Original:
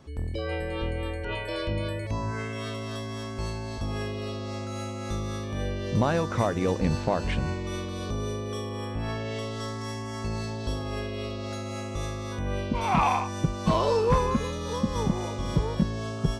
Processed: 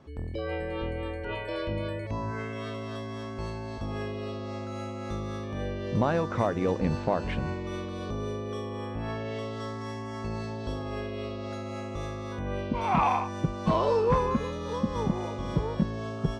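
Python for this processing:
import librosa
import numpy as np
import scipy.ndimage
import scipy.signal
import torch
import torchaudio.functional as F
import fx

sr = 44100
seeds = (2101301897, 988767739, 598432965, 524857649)

y = fx.lowpass(x, sr, hz=2100.0, slope=6)
y = fx.low_shelf(y, sr, hz=110.0, db=-6.5)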